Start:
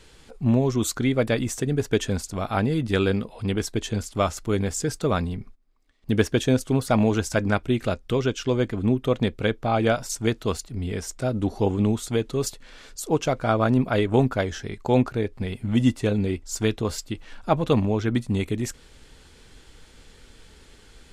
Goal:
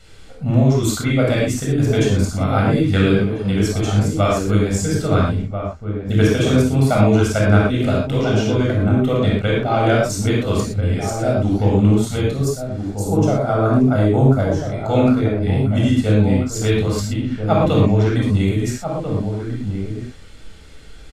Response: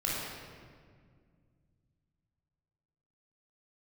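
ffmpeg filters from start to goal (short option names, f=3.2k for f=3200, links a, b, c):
-filter_complex "[0:a]asettb=1/sr,asplit=3[a][b][c];[a]atrim=end=12.344[d];[b]atrim=start=12.34:end=14.72,asetpts=PTS-STARTPTS,afade=t=in:d=0.004:c=qsin,afade=t=out:st=2.376:d=0.004:c=qsin,equalizer=f=2.7k:t=o:w=1.6:g=-11.5[e];[c]atrim=start=14.716[f];[d][e]acrossfade=d=0.004:c1=hsin:c2=qsin[g];[g][f]acrossfade=d=0.004:c1=qsin:c2=hsin,asplit=2[h][i];[i]adelay=1341,volume=-7dB,highshelf=f=4k:g=-30.2[j];[h][j]amix=inputs=2:normalize=0[k];[1:a]atrim=start_sample=2205,afade=t=out:st=0.18:d=0.01,atrim=end_sample=8379[l];[k][l]afir=irnorm=-1:irlink=0"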